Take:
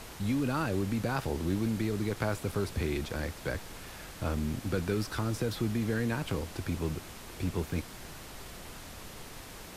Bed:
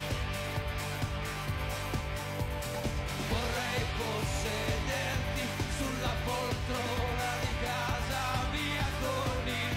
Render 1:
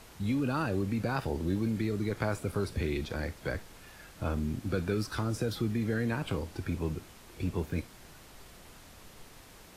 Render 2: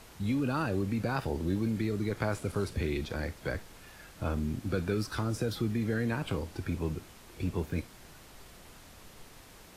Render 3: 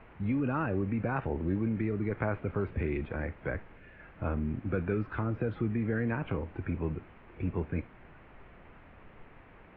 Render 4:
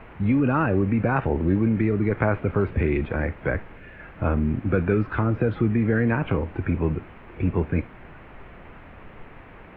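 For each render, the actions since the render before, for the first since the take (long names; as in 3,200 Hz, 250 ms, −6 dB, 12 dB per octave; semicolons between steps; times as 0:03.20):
noise reduction from a noise print 7 dB
0:02.33–0:02.73: variable-slope delta modulation 64 kbit/s
Butterworth low-pass 2,500 Hz 36 dB per octave; 0:03.76–0:04.00: gain on a spectral selection 670–1,400 Hz −7 dB
level +9.5 dB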